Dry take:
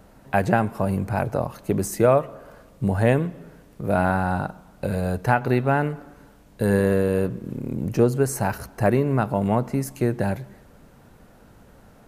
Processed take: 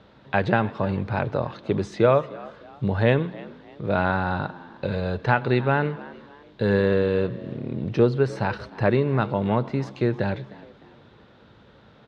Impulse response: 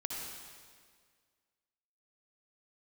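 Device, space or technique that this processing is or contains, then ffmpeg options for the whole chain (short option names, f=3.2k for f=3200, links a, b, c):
frequency-shifting delay pedal into a guitar cabinet: -filter_complex "[0:a]asplit=4[a][b][c][d];[b]adelay=305,afreqshift=77,volume=-20dB[e];[c]adelay=610,afreqshift=154,volume=-28.6dB[f];[d]adelay=915,afreqshift=231,volume=-37.3dB[g];[a][e][f][g]amix=inputs=4:normalize=0,highpass=90,equalizer=f=180:t=q:w=4:g=-4,equalizer=f=270:t=q:w=4:g=-4,equalizer=f=710:t=q:w=4:g=-6,equalizer=f=3.6k:t=q:w=4:g=10,lowpass=f=4.4k:w=0.5412,lowpass=f=4.4k:w=1.3066,asettb=1/sr,asplit=3[h][i][j];[h]atrim=end=7.534[k];[i]atrim=start=7.53:end=9.19,asetpts=PTS-STARTPTS,afade=t=in:d=0.004:c=qsin,afade=t=out:st=1.656:d=0.004:c=qsin,bandreject=f=6.7k:w=7.7[l];[j]atrim=start=9.186[m];[k][l]acrossfade=d=0.004:c1=hsin:c2=qsin[n];[n][m]acrossfade=d=0.004:c1=qsin:c2=hsin,volume=1dB"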